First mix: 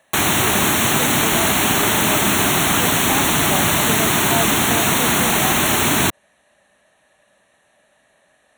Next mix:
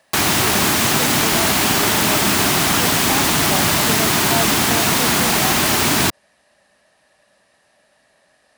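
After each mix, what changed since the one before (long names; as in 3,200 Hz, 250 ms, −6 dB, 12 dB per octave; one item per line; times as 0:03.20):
master: remove Butterworth band-reject 4,900 Hz, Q 2.9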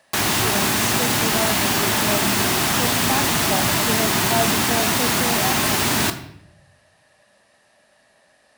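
background −5.0 dB
reverb: on, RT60 0.75 s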